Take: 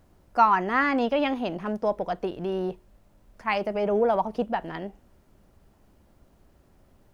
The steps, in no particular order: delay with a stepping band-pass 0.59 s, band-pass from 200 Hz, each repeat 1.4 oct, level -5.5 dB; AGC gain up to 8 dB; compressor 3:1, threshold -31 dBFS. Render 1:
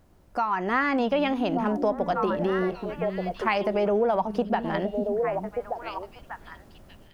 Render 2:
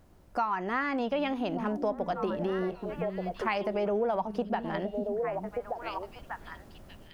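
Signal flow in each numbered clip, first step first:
delay with a stepping band-pass > compressor > AGC; AGC > delay with a stepping band-pass > compressor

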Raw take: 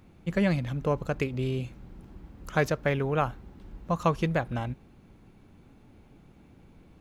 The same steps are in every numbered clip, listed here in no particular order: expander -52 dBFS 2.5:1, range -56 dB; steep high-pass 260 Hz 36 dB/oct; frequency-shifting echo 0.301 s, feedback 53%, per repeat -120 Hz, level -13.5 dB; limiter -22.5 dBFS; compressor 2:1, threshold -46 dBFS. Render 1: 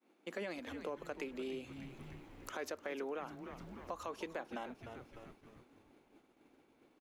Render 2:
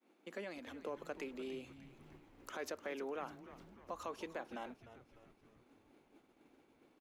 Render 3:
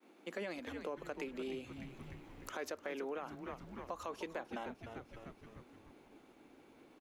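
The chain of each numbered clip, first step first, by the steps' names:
steep high-pass > limiter > frequency-shifting echo > expander > compressor; limiter > compressor > steep high-pass > expander > frequency-shifting echo; expander > steep high-pass > frequency-shifting echo > limiter > compressor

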